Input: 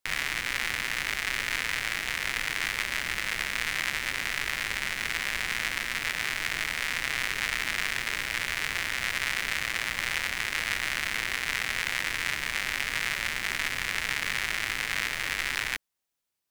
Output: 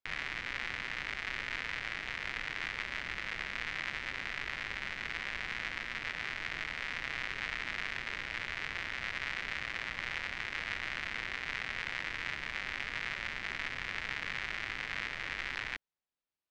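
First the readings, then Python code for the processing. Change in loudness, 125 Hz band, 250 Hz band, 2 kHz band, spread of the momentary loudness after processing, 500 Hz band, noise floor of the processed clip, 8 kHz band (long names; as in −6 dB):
−8.5 dB, −6.0 dB, −6.0 dB, −7.5 dB, 1 LU, −6.5 dB, −45 dBFS, −19.5 dB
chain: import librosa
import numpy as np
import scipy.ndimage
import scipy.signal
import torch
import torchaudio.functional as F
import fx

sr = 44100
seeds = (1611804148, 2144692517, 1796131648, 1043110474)

y = fx.air_absorb(x, sr, metres=170.0)
y = y * 10.0 ** (-6.0 / 20.0)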